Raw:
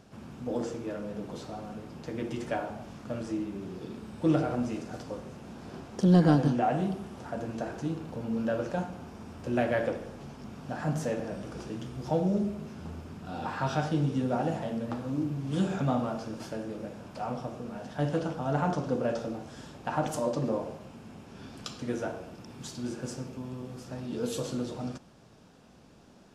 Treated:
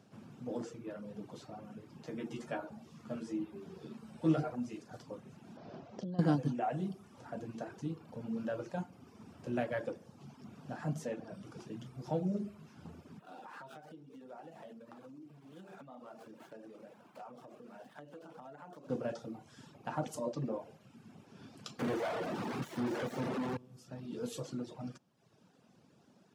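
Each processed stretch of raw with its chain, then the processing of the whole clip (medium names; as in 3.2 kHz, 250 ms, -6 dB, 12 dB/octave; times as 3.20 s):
2.03–4.50 s: high-pass 62 Hz + hum notches 50/100/150/200/250/300/350 Hz + doubling 13 ms -4 dB
5.57–6.19 s: low-pass 6 kHz 24 dB/octave + peaking EQ 630 Hz +9.5 dB 0.52 oct + compression 12:1, threshold -31 dBFS
13.19–18.90 s: median filter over 9 samples + compression 12:1, threshold -35 dBFS + Bessel high-pass 350 Hz
21.79–23.57 s: overdrive pedal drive 41 dB, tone 1.7 kHz, clips at -19.5 dBFS + sliding maximum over 9 samples
whole clip: reverb removal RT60 0.91 s; high-pass 110 Hz 24 dB/octave; bass shelf 170 Hz +5 dB; trim -7.5 dB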